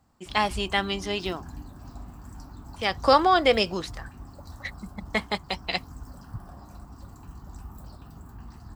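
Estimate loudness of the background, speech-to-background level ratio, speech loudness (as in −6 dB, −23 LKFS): −44.0 LKFS, 19.0 dB, −25.0 LKFS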